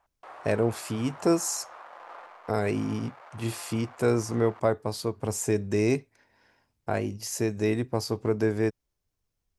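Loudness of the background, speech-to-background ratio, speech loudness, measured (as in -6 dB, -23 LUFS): -47.0 LUFS, 18.5 dB, -28.5 LUFS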